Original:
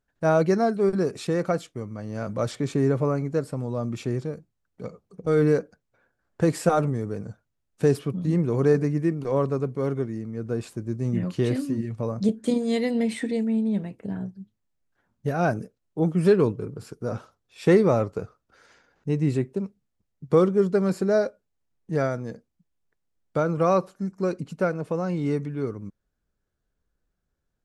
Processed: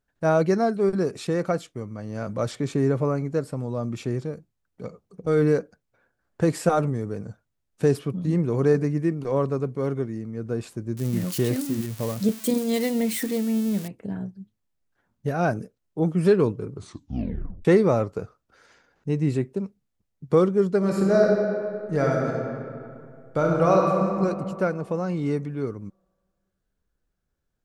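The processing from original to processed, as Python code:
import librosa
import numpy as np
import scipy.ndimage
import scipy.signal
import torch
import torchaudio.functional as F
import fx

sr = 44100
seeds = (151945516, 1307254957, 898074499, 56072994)

y = fx.crossing_spikes(x, sr, level_db=-23.5, at=(10.97, 13.88))
y = fx.reverb_throw(y, sr, start_s=20.77, length_s=3.34, rt60_s=2.4, drr_db=-1.5)
y = fx.edit(y, sr, fx.tape_stop(start_s=16.71, length_s=0.94), tone=tone)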